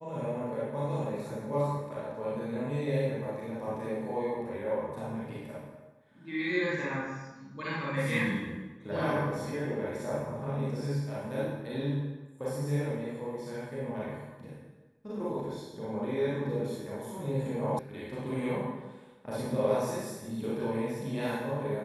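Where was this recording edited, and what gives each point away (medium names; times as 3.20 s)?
17.79 s: sound stops dead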